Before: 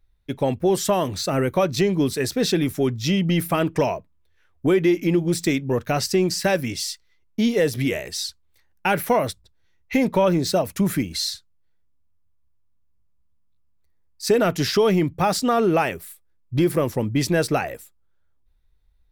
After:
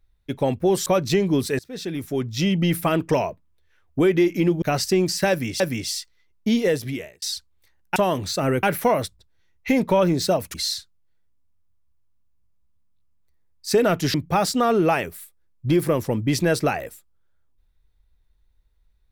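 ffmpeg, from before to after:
-filter_complex "[0:a]asplit=10[a][b][c][d][e][f][g][h][i][j];[a]atrim=end=0.862[k];[b]atrim=start=1.528:end=2.26,asetpts=PTS-STARTPTS,afade=t=out:st=0.728:d=0.004:c=hsin:silence=0.0707946[l];[c]atrim=start=2.26:end=5.292,asetpts=PTS-STARTPTS,afade=t=in:d=0.92:silence=0.0707946[m];[d]atrim=start=5.838:end=6.822[n];[e]atrim=start=6.518:end=8.14,asetpts=PTS-STARTPTS,afade=t=out:st=1.022:d=0.6[o];[f]atrim=start=8.14:end=8.882,asetpts=PTS-STARTPTS,afade=t=in:d=0.004:c=hsin[p];[g]atrim=start=0.858:end=1.532[q];[h]atrim=start=8.878:end=10.792[r];[i]atrim=start=11.098:end=14.702[s];[j]atrim=start=15.018[t];[l][m]concat=n=2:v=0:a=1[u];[k][u]acrossfade=d=0.004:c1=hsin:c2=hsin[v];[v][n]acrossfade=d=0.004:c1=hsin:c2=hsin[w];[o][p]concat=n=2:v=0:a=1[x];[w][x]acrossfade=d=0.004:c1=hsin:c2=hsin[y];[y][q]acrossfade=d=0.004:c1=hsin:c2=hsin[z];[z][r]acrossfade=d=0.004:c1=hsin:c2=hsin[aa];[aa][s]acrossfade=d=0.004:c1=hsin:c2=hsin[ab];[ab][t]acrossfade=d=0.004:c1=hsin:c2=hsin"

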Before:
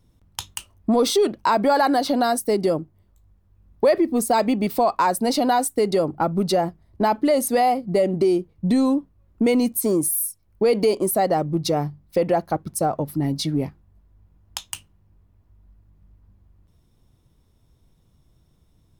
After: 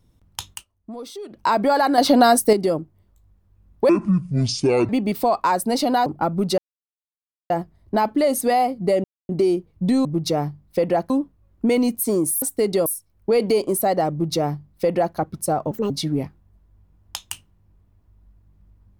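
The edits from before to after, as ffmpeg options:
-filter_complex "[0:a]asplit=16[a][b][c][d][e][f][g][h][i][j][k][l][m][n][o][p];[a]atrim=end=0.65,asetpts=PTS-STARTPTS,afade=t=out:st=0.52:d=0.13:silence=0.149624[q];[b]atrim=start=0.65:end=1.29,asetpts=PTS-STARTPTS,volume=-16.5dB[r];[c]atrim=start=1.29:end=1.982,asetpts=PTS-STARTPTS,afade=t=in:d=0.13:silence=0.149624[s];[d]atrim=start=1.978:end=2.532,asetpts=PTS-STARTPTS,volume=6.5dB[t];[e]atrim=start=2.528:end=3.894[u];[f]atrim=start=3.89:end=4.44,asetpts=PTS-STARTPTS,asetrate=24255,aresample=44100[v];[g]atrim=start=4.436:end=5.612[w];[h]atrim=start=6.048:end=6.57,asetpts=PTS-STARTPTS,afade=t=out:st=0.518:d=0.004:c=hsin,apad=pad_dur=0.92[x];[i]atrim=start=6.57:end=8.11,asetpts=PTS-STARTPTS,afade=t=in:d=0.004:c=hsin,afade=t=out:st=1.536:d=0.004:c=hsin,apad=pad_dur=0.25[y];[j]atrim=start=8.11:end=8.872,asetpts=PTS-STARTPTS,afade=t=in:d=0.004:c=hsin[z];[k]atrim=start=11.438:end=12.492[aa];[l]atrim=start=8.868:end=10.192[ab];[m]atrim=start=5.608:end=6.052[ac];[n]atrim=start=10.188:end=13.044[ad];[o]atrim=start=13.04:end=13.32,asetpts=PTS-STARTPTS,asetrate=64386,aresample=44100[ae];[p]atrim=start=13.316[af];[q][r][s]concat=n=3:v=0:a=1[ag];[ag][t]acrossfade=d=0.004:c1=hsin:c2=hsin[ah];[ah][u]acrossfade=d=0.004:c1=hsin:c2=hsin[ai];[ai][v]acrossfade=d=0.004:c1=hsin:c2=hsin[aj];[aj][w]acrossfade=d=0.004:c1=hsin:c2=hsin[ak];[x][y][z]concat=n=3:v=0:a=1[al];[ak][al]acrossfade=d=0.004:c1=hsin:c2=hsin[am];[am][aa]acrossfade=d=0.004:c1=hsin:c2=hsin[an];[an][ab]acrossfade=d=0.004:c1=hsin:c2=hsin[ao];[ao][ac]acrossfade=d=0.004:c1=hsin:c2=hsin[ap];[ap][ad]acrossfade=d=0.004:c1=hsin:c2=hsin[aq];[aq][ae]acrossfade=d=0.004:c1=hsin:c2=hsin[ar];[ar][af]acrossfade=d=0.004:c1=hsin:c2=hsin"

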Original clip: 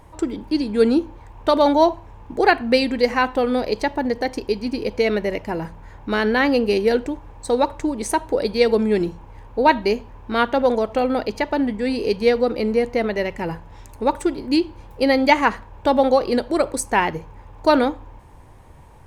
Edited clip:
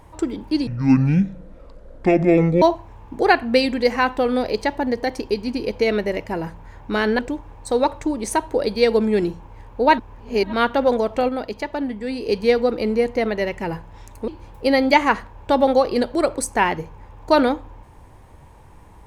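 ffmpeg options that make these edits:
-filter_complex "[0:a]asplit=9[a][b][c][d][e][f][g][h][i];[a]atrim=end=0.674[j];[b]atrim=start=0.67:end=1.8,asetpts=PTS-STARTPTS,asetrate=25578,aresample=44100[k];[c]atrim=start=1.796:end=6.372[l];[d]atrim=start=6.968:end=9.762[m];[e]atrim=start=9.758:end=10.312,asetpts=PTS-STARTPTS,areverse[n];[f]atrim=start=10.308:end=11.072[o];[g]atrim=start=11.068:end=12.072,asetpts=PTS-STARTPTS,volume=-4.5dB[p];[h]atrim=start=12.068:end=14.062[q];[i]atrim=start=14.638[r];[j][k]acrossfade=d=0.004:c1=hsin:c2=hsin[s];[s][l]acrossfade=d=0.004:c1=hsin:c2=hsin[t];[t][m]acrossfade=d=0.004:c1=hsin:c2=hsin[u];[u][n]acrossfade=d=0.004:c1=hsin:c2=hsin[v];[v][o]acrossfade=d=0.004:c1=hsin:c2=hsin[w];[w][p]acrossfade=d=0.004:c1=hsin:c2=hsin[x];[x][q]acrossfade=d=0.004:c1=hsin:c2=hsin[y];[y][r]acrossfade=d=0.004:c1=hsin:c2=hsin"

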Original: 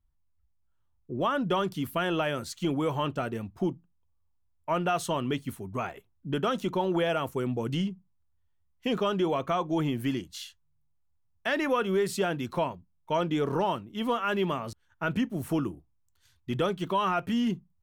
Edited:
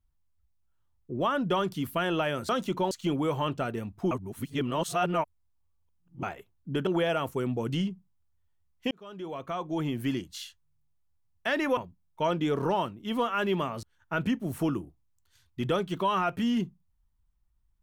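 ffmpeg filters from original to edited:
-filter_complex "[0:a]asplit=8[a][b][c][d][e][f][g][h];[a]atrim=end=2.492[i];[b]atrim=start=6.448:end=6.872[j];[c]atrim=start=2.488:end=3.692[k];[d]atrim=start=3.688:end=5.812,asetpts=PTS-STARTPTS,areverse[l];[e]atrim=start=5.808:end=6.452[m];[f]atrim=start=6.868:end=8.91,asetpts=PTS-STARTPTS,afade=t=out:st=2.038:d=0.004:c=hsin[n];[g]atrim=start=8.91:end=11.772,asetpts=PTS-STARTPTS,afade=t=in:d=1.23[o];[h]atrim=start=12.668[p];[i][j]acrossfade=d=0.004:c1=hsin:c2=hsin[q];[q][k]acrossfade=d=0.004:c1=hsin:c2=hsin[r];[r][l]acrossfade=d=0.004:c1=hsin:c2=hsin[s];[s][m]acrossfade=d=0.004:c1=hsin:c2=hsin[t];[n][o]concat=n=2:v=0:a=1[u];[t][u]acrossfade=d=0.004:c1=hsin:c2=hsin[v];[v][p]acrossfade=d=0.004:c1=hsin:c2=hsin"

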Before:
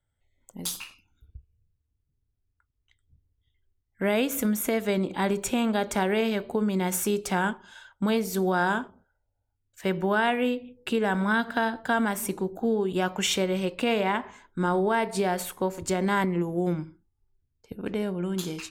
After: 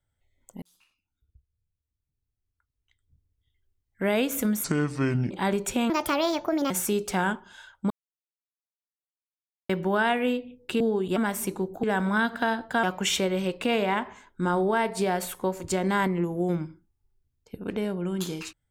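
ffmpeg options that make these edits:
-filter_complex "[0:a]asplit=12[a][b][c][d][e][f][g][h][i][j][k][l];[a]atrim=end=0.62,asetpts=PTS-STARTPTS,afade=t=out:st=0.616:d=0.004:c=hsin[m];[b]atrim=start=0.62:end=4.644,asetpts=PTS-STARTPTS,afade=t=in:d=3.48[n];[c]atrim=start=4.64:end=5.08,asetpts=PTS-STARTPTS,asetrate=29106,aresample=44100[o];[d]atrim=start=5.076:end=5.674[p];[e]atrim=start=5.67:end=6.88,asetpts=PTS-STARTPTS,asetrate=66150,aresample=44100[q];[f]atrim=start=6.876:end=8.08,asetpts=PTS-STARTPTS,afade=t=out:st=1.2:d=0.004:c=hsin[r];[g]atrim=start=8.08:end=9.87,asetpts=PTS-STARTPTS,volume=0[s];[h]atrim=start=9.87:end=10.982,asetpts=PTS-STARTPTS,afade=t=in:d=0.004:c=hsin[t];[i]atrim=start=12.648:end=13.012[u];[j]atrim=start=11.978:end=12.652[v];[k]atrim=start=10.978:end=11.982[w];[l]atrim=start=13.008[x];[m][n]concat=n=2:v=0:a=1[y];[y][o]acrossfade=d=0.004:c1=hsin:c2=hsin[z];[z][p]acrossfade=d=0.004:c1=hsin:c2=hsin[aa];[aa][q]acrossfade=d=0.004:c1=hsin:c2=hsin[ab];[r][s][t]concat=n=3:v=0:a=1[ac];[ab][ac]acrossfade=d=0.004:c1=hsin:c2=hsin[ad];[ad][u]acrossfade=d=0.004:c1=hsin:c2=hsin[ae];[ae][v]acrossfade=d=0.004:c1=hsin:c2=hsin[af];[af][w]acrossfade=d=0.004:c1=hsin:c2=hsin[ag];[ag][x]acrossfade=d=0.004:c1=hsin:c2=hsin"

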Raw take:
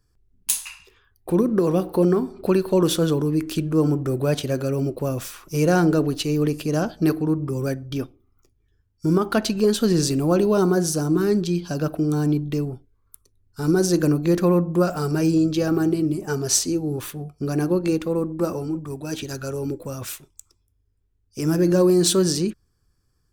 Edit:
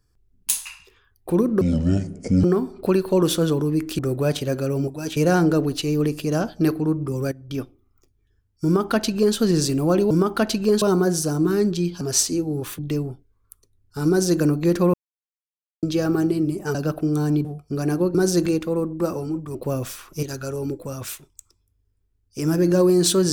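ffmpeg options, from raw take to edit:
-filter_complex "[0:a]asplit=19[a][b][c][d][e][f][g][h][i][j][k][l][m][n][o][p][q][r][s];[a]atrim=end=1.614[t];[b]atrim=start=1.61:end=2.04,asetpts=PTS-STARTPTS,asetrate=22932,aresample=44100,atrim=end_sample=36467,asetpts=PTS-STARTPTS[u];[c]atrim=start=2.036:end=3.592[v];[d]atrim=start=4.008:end=4.902[w];[e]atrim=start=18.938:end=19.232[x];[f]atrim=start=5.578:end=7.73,asetpts=PTS-STARTPTS,afade=t=out:st=2.148:d=0.004:c=hsin:silence=0.188365[y];[g]atrim=start=7.73:end=10.522,asetpts=PTS-STARTPTS,afade=t=in:d=0.29:silence=0.188365[z];[h]atrim=start=9.058:end=9.772[aa];[i]atrim=start=10.518:end=11.712[ab];[j]atrim=start=16.368:end=17.152[ac];[k]atrim=start=12.408:end=14.56,asetpts=PTS-STARTPTS,afade=t=out:st=2.148:d=0.004:c=hsin[ad];[l]atrim=start=14.56:end=15.45,asetpts=PTS-STARTPTS,volume=0[ae];[m]atrim=start=15.45:end=16.372,asetpts=PTS-STARTPTS,afade=t=in:d=0.004:c=hsin[af];[n]atrim=start=11.708:end=12.412[ag];[o]atrim=start=17.148:end=17.852[ah];[p]atrim=start=13.708:end=14.022[ai];[q]atrim=start=17.848:end=18.942[aj];[r]atrim=start=4.898:end=5.582[ak];[s]atrim=start=19.228[al];[t][u]acrossfade=d=0.004:c1=hsin:c2=hsin[am];[am][v]acrossfade=d=0.004:c1=hsin:c2=hsin[an];[an][w]acrossfade=d=0.004:c1=hsin:c2=hsin[ao];[ao][x]acrossfade=d=0.004:c1=hsin:c2=hsin[ap];[y][z]concat=n=2:v=0:a=1[aq];[ap][aq]acrossfade=d=0.004:c1=hsin:c2=hsin[ar];[ar][aa]acrossfade=d=0.004:c1=hsin:c2=hsin[as];[as][ab]acrossfade=d=0.004:c1=hsin:c2=hsin[at];[at][ac]acrossfade=d=0.004:c1=hsin:c2=hsin[au];[ad][ae][af]concat=n=3:v=0:a=1[av];[au][av]acrossfade=d=0.004:c1=hsin:c2=hsin[aw];[aw][ag]acrossfade=d=0.004:c1=hsin:c2=hsin[ax];[ax][ah]acrossfade=d=0.004:c1=hsin:c2=hsin[ay];[ay][ai]acrossfade=d=0.004:c1=hsin:c2=hsin[az];[az][aj]acrossfade=d=0.004:c1=hsin:c2=hsin[ba];[ba][ak]acrossfade=d=0.004:c1=hsin:c2=hsin[bb];[bb][al]acrossfade=d=0.004:c1=hsin:c2=hsin"

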